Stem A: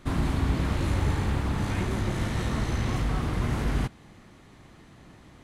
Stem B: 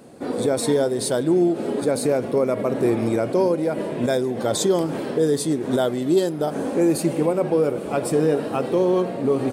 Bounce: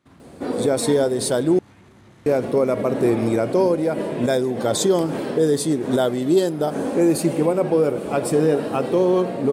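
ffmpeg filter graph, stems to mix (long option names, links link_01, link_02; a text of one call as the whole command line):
ffmpeg -i stem1.wav -i stem2.wav -filter_complex "[0:a]highpass=110,alimiter=level_in=1dB:limit=-24dB:level=0:latency=1:release=75,volume=-1dB,volume=-16dB[link_01];[1:a]adelay=200,volume=1.5dB,asplit=3[link_02][link_03][link_04];[link_02]atrim=end=1.59,asetpts=PTS-STARTPTS,afade=type=out:start_time=1.586:duration=0.004:curve=hsin[link_05];[link_03]atrim=start=1.59:end=2.26,asetpts=PTS-STARTPTS,volume=0[link_06];[link_04]atrim=start=2.26,asetpts=PTS-STARTPTS,afade=type=in:duration=0.004:curve=hsin[link_07];[link_05][link_06][link_07]concat=n=3:v=0:a=1[link_08];[link_01][link_08]amix=inputs=2:normalize=0" out.wav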